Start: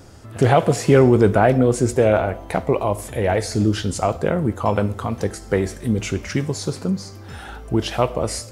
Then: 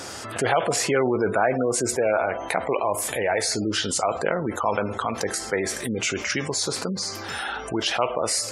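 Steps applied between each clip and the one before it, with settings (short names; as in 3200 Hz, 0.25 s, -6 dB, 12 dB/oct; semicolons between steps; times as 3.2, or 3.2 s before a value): HPF 1100 Hz 6 dB/oct; spectral gate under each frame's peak -25 dB strong; fast leveller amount 50%; gain -1 dB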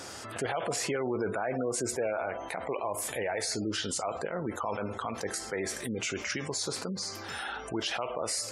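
limiter -15 dBFS, peak gain reduction 8 dB; gain -7 dB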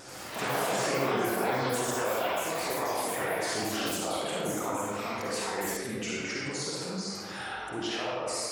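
vibrato 12 Hz 76 cents; reverb RT60 1.4 s, pre-delay 45 ms, DRR -5 dB; echoes that change speed 86 ms, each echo +7 st, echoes 3; gain -5.5 dB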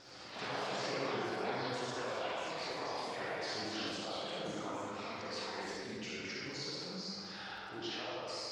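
ladder low-pass 5500 Hz, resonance 45%; crackle 22/s -53 dBFS; echo with dull and thin repeats by turns 0.101 s, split 1800 Hz, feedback 65%, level -6 dB; gain -1.5 dB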